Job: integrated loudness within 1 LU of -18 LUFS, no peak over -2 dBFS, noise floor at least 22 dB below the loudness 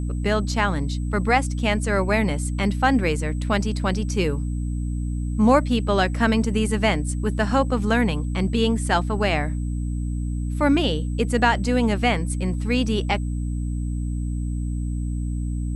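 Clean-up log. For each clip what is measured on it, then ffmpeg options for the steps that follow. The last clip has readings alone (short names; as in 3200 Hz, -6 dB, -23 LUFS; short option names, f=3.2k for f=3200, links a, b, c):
hum 60 Hz; harmonics up to 300 Hz; hum level -23 dBFS; steady tone 8000 Hz; tone level -51 dBFS; loudness -23.0 LUFS; peak -5.0 dBFS; loudness target -18.0 LUFS
-> -af "bandreject=f=60:t=h:w=4,bandreject=f=120:t=h:w=4,bandreject=f=180:t=h:w=4,bandreject=f=240:t=h:w=4,bandreject=f=300:t=h:w=4"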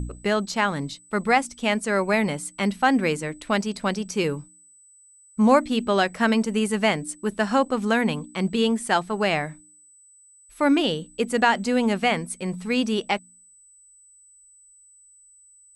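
hum none; steady tone 8000 Hz; tone level -51 dBFS
-> -af "bandreject=f=8k:w=30"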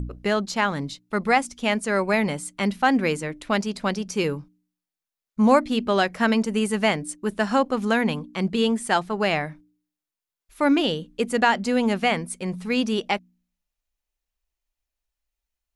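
steady tone none; loudness -23.5 LUFS; peak -6.5 dBFS; loudness target -18.0 LUFS
-> -af "volume=5.5dB,alimiter=limit=-2dB:level=0:latency=1"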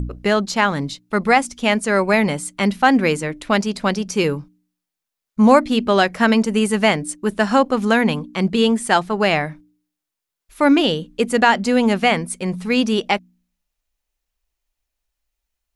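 loudness -18.0 LUFS; peak -2.0 dBFS; noise floor -84 dBFS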